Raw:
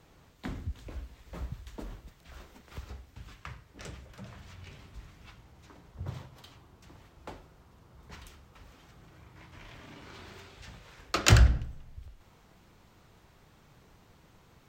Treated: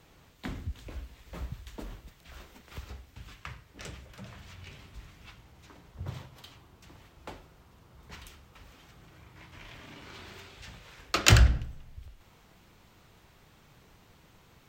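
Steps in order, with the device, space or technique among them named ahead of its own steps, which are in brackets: presence and air boost (bell 2800 Hz +3.5 dB 1.4 oct; high shelf 9300 Hz +5.5 dB)

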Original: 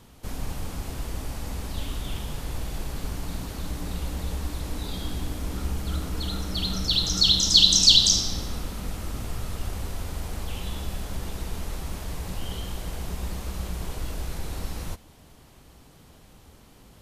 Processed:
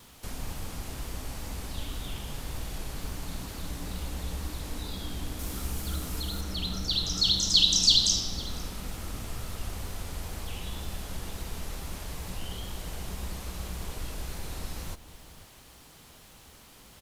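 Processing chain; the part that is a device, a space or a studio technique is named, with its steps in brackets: noise-reduction cassette on a plain deck (mismatched tape noise reduction encoder only; wow and flutter; white noise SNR 34 dB); 5.39–6.41 high shelf 6700 Hz +9 dB; outdoor echo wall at 86 m, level -15 dB; gain -5 dB

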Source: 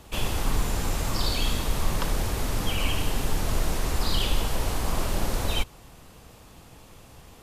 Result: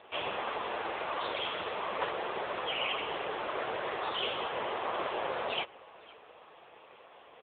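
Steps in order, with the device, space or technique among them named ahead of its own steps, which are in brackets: steep high-pass 340 Hz 48 dB/oct; satellite phone (BPF 350–3300 Hz; echo 0.511 s -23.5 dB; gain +4 dB; AMR-NB 6.7 kbps 8000 Hz)

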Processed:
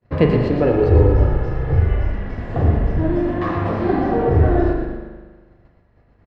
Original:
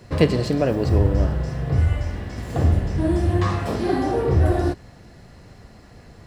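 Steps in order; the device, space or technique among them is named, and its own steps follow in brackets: hearing-loss simulation (LPF 2200 Hz 12 dB/oct; expander -34 dBFS); 0.6–1.81 comb 2.3 ms, depth 70%; 3.04–3.56 HPF 220 Hz 12 dB/oct; frequency-shifting echo 0.117 s, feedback 45%, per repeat -34 Hz, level -7.5 dB; spring tank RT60 1.4 s, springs 40 ms, chirp 40 ms, DRR 4 dB; gain +1.5 dB

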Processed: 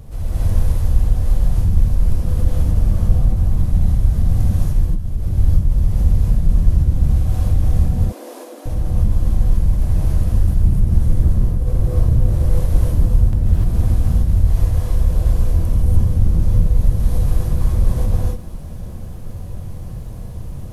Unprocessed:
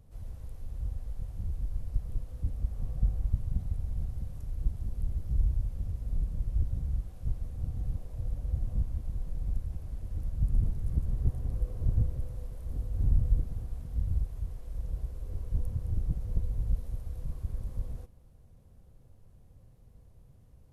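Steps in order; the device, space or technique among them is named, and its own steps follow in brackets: loud club master (compressor 3:1, threshold -28 dBFS, peak gain reduction 8 dB; hard clip -24.5 dBFS, distortion -23 dB; maximiser +33.5 dB); 7.81–8.66 steep high-pass 250 Hz 96 dB/oct; non-linear reverb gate 0.32 s rising, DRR -7 dB; gain -14 dB

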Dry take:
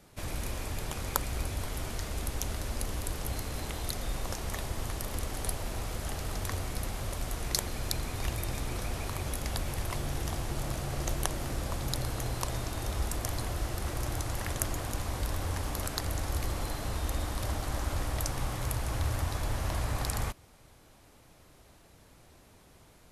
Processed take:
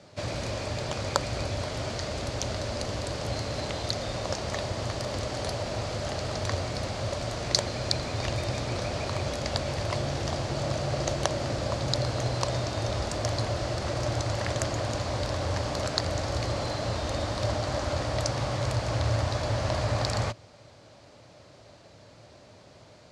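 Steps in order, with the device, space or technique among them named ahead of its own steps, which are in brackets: car door speaker (speaker cabinet 92–7000 Hz, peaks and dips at 110 Hz +7 dB, 590 Hz +10 dB, 4500 Hz +6 dB); gain +4.5 dB

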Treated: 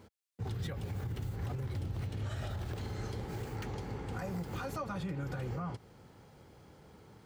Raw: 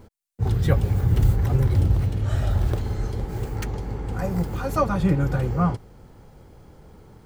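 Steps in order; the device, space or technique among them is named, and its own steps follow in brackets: broadcast voice chain (HPF 86 Hz 12 dB/oct; de-esser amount 75%; compressor 4:1, threshold -25 dBFS, peak gain reduction 9.5 dB; bell 3200 Hz +5.5 dB 2.7 oct; limiter -22.5 dBFS, peak gain reduction 8 dB); gain -7.5 dB

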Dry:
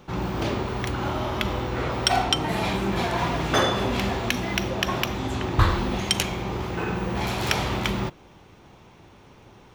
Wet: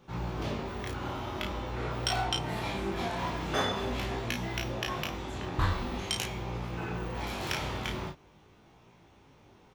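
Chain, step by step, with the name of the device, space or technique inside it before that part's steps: double-tracked vocal (doubler 33 ms -5 dB; chorus 0.45 Hz, delay 17.5 ms, depth 4.6 ms); gain -6.5 dB

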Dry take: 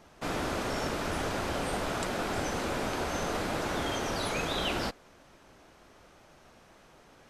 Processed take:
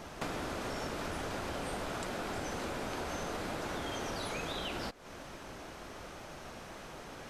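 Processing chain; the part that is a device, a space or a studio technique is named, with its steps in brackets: serial compression, leveller first (compressor 1.5:1, threshold -42 dBFS, peak gain reduction 5.5 dB; compressor 6:1, threshold -46 dBFS, peak gain reduction 13 dB); gain +10 dB

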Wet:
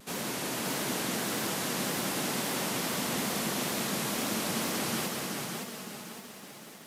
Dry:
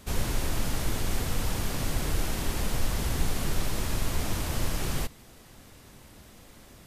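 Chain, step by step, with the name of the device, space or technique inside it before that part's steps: Chebyshev high-pass 190 Hz, order 3; multi-head tape echo (multi-head echo 0.189 s, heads all three, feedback 41%, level -7 dB; wow and flutter); lo-fi delay 0.562 s, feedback 55%, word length 9-bit, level -10.5 dB

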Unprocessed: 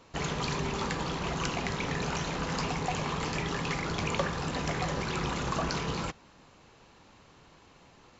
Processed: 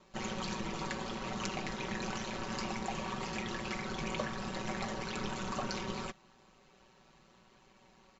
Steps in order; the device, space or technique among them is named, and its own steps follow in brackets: ring-modulated robot voice (ring modulator 59 Hz; comb 5.3 ms, depth 69%); gain -4.5 dB

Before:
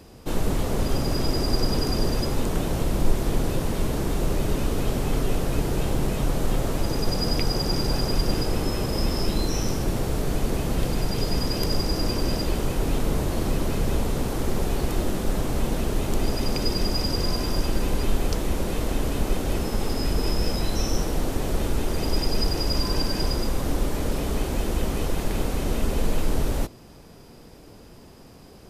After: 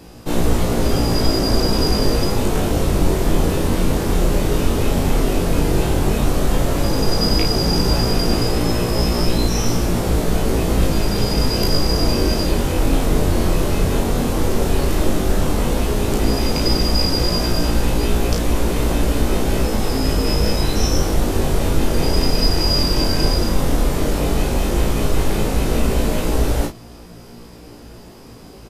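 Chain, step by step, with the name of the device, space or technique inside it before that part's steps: double-tracked vocal (doubler 34 ms -4 dB; chorus 0.11 Hz, delay 17 ms, depth 5.1 ms); gain +9 dB

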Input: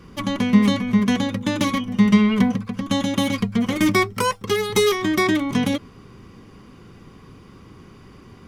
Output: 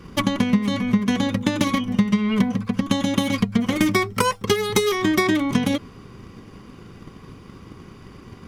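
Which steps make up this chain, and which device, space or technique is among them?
drum-bus smash (transient shaper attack +8 dB, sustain +1 dB; compressor 10:1, threshold -15 dBFS, peak gain reduction 13.5 dB; soft clip -7.5 dBFS, distortion -21 dB); gain +1.5 dB

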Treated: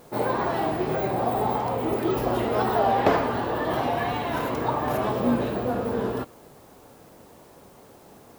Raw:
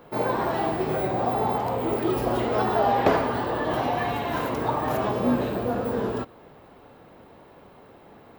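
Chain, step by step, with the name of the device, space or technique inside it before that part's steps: plain cassette with noise reduction switched in (mismatched tape noise reduction decoder only; wow and flutter 47 cents; white noise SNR 33 dB)

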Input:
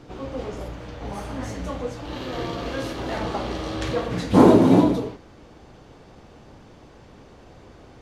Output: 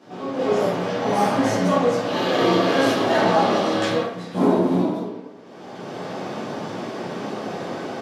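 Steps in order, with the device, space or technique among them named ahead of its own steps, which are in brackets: far laptop microphone (reverb RT60 0.85 s, pre-delay 9 ms, DRR -9.5 dB; HPF 170 Hz 24 dB/oct; AGC gain up to 15 dB); gain -5.5 dB

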